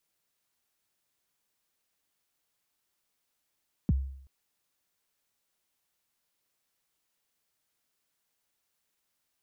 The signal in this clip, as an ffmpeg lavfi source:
ffmpeg -f lavfi -i "aevalsrc='0.112*pow(10,-3*t/0.66)*sin(2*PI*(260*0.028/log(67/260)*(exp(log(67/260)*min(t,0.028)/0.028)-1)+67*max(t-0.028,0)))':duration=0.38:sample_rate=44100" out.wav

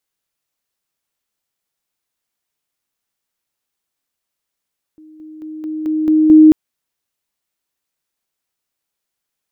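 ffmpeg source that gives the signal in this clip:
ffmpeg -f lavfi -i "aevalsrc='pow(10,(-38.5+6*floor(t/0.22))/20)*sin(2*PI*311*t)':duration=1.54:sample_rate=44100" out.wav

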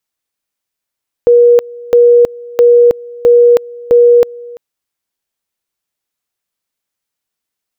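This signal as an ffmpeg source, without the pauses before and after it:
ffmpeg -f lavfi -i "aevalsrc='pow(10,(-2.5-23*gte(mod(t,0.66),0.32))/20)*sin(2*PI*479*t)':duration=3.3:sample_rate=44100" out.wav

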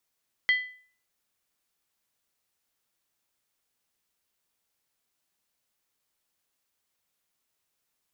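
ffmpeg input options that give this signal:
ffmpeg -f lavfi -i "aevalsrc='0.141*pow(10,-3*t/0.47)*sin(2*PI*2000*t)+0.0447*pow(10,-3*t/0.372)*sin(2*PI*3188*t)+0.0141*pow(10,-3*t/0.322)*sin(2*PI*4272*t)+0.00447*pow(10,-3*t/0.31)*sin(2*PI*4592*t)+0.00141*pow(10,-3*t/0.289)*sin(2*PI*5306*t)':duration=0.63:sample_rate=44100" out.wav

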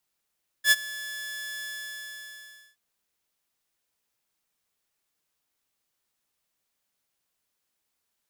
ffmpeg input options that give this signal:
ffmpeg -f lavfi -i "aevalsrc='0.266*(2*mod(1720*t,1)-1)':duration=2.12:sample_rate=44100,afade=type=in:duration=0.074,afade=type=out:start_time=0.074:duration=0.036:silence=0.1,afade=type=out:start_time=0.99:duration=1.13" out.wav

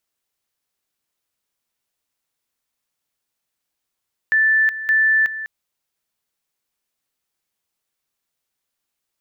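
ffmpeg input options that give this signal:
ffmpeg -f lavfi -i "aevalsrc='pow(10,(-12.5-13*gte(mod(t,0.57),0.37))/20)*sin(2*PI*1760*t)':duration=1.14:sample_rate=44100" out.wav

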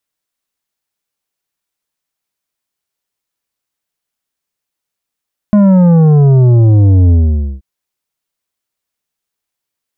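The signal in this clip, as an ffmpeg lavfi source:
ffmpeg -f lavfi -i "aevalsrc='0.562*clip((2.08-t)/0.5,0,1)*tanh(2.82*sin(2*PI*210*2.08/log(65/210)*(exp(log(65/210)*t/2.08)-1)))/tanh(2.82)':duration=2.08:sample_rate=44100" out.wav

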